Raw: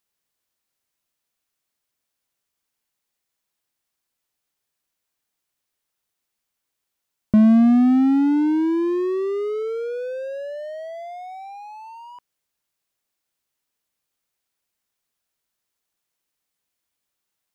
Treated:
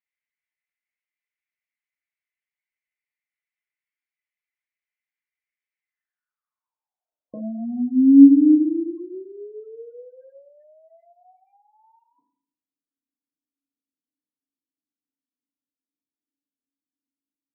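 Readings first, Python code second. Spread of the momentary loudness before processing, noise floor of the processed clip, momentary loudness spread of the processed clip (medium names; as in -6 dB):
22 LU, under -85 dBFS, 21 LU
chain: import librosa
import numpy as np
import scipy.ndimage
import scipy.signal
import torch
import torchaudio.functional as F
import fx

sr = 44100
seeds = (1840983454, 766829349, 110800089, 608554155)

y = fx.filter_sweep_bandpass(x, sr, from_hz=2100.0, to_hz=260.0, start_s=5.86, end_s=8.07, q=7.5)
y = fx.rev_fdn(y, sr, rt60_s=0.6, lf_ratio=1.55, hf_ratio=0.65, size_ms=20.0, drr_db=0.0)
y = fx.spec_gate(y, sr, threshold_db=-25, keep='strong')
y = y * librosa.db_to_amplitude(1.0)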